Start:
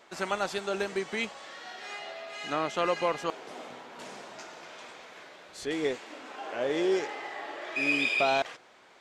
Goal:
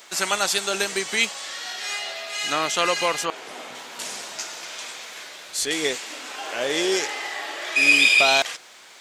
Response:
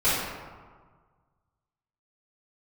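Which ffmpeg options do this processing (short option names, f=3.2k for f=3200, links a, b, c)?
-filter_complex "[0:a]crystalizer=i=8.5:c=0,asettb=1/sr,asplit=3[a][b][c];[a]atrim=end=3.254[d];[b]atrim=start=3.25:end=3.75,asetpts=PTS-STARTPTS,afade=t=in:d=0.004:c=qsin,afade=t=out:st=0.496:d=0.004:c=qsin,acrossover=split=3000[e][f];[f]acompressor=threshold=-46dB:ratio=4:attack=1:release=60[g];[e][g]amix=inputs=2:normalize=0[h];[c]atrim=start=3.746[i];[d][h]acrossfade=d=0.004:c1=hsin:c2=qsin[j];[j][i]acrossfade=d=0.004:c1=qsin:c2=hsin,volume=1.5dB"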